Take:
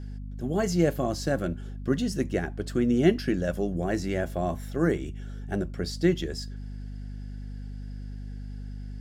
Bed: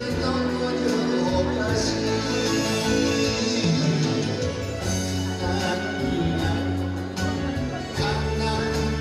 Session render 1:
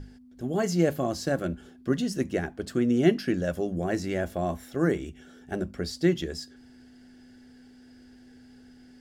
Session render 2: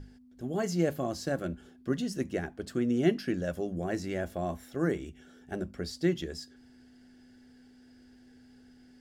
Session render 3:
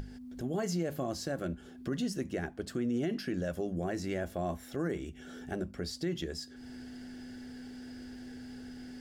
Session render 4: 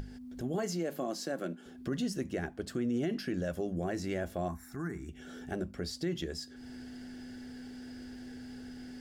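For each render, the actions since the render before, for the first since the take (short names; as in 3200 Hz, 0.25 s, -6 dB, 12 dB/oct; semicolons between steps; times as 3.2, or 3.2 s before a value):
notches 50/100/150/200 Hz
gain -4.5 dB
limiter -24.5 dBFS, peak gain reduction 12 dB; upward compressor, threshold -35 dBFS
0.58–1.66 HPF 190 Hz 24 dB/oct; 4.48–5.09 fixed phaser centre 1300 Hz, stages 4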